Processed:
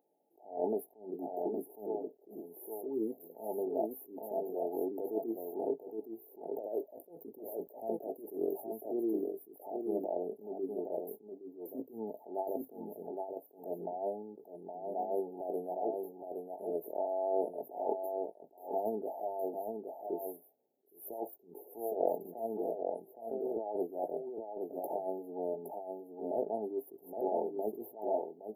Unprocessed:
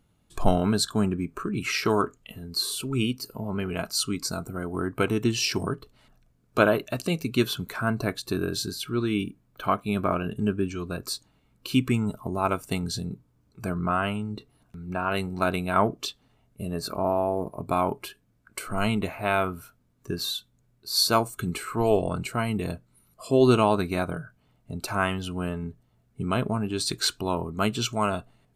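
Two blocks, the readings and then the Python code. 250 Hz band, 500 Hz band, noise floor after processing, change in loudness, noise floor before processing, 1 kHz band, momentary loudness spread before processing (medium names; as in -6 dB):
-13.5 dB, -6.5 dB, -63 dBFS, -11.5 dB, -66 dBFS, -11.5 dB, 12 LU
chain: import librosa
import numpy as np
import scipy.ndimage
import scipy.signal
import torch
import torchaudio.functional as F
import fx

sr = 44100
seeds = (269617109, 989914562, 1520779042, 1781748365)

y = scipy.signal.sosfilt(scipy.signal.butter(4, 380.0, 'highpass', fs=sr, output='sos'), x)
y = fx.band_shelf(y, sr, hz=7200.0, db=-15.5, octaves=1.7)
y = fx.over_compress(y, sr, threshold_db=-30.0, ratio=-1.0)
y = fx.brickwall_bandstop(y, sr, low_hz=890.0, high_hz=10000.0)
y = fx.doubler(y, sr, ms=18.0, db=-11.0)
y = y + 10.0 ** (-5.0 / 20.0) * np.pad(y, (int(816 * sr / 1000.0), 0))[:len(y)]
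y = fx.attack_slew(y, sr, db_per_s=140.0)
y = y * librosa.db_to_amplitude(-2.0)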